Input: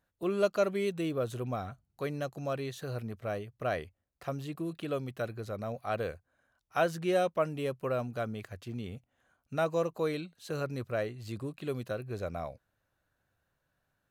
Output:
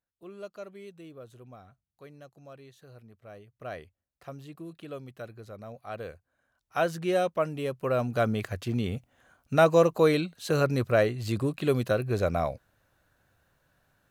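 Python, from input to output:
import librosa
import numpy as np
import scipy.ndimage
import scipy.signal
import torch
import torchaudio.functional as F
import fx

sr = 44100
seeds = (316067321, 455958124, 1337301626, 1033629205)

y = fx.gain(x, sr, db=fx.line((3.18, -14.0), (3.72, -6.0), (5.81, -6.0), (6.88, 2.0), (7.72, 2.0), (8.27, 10.0)))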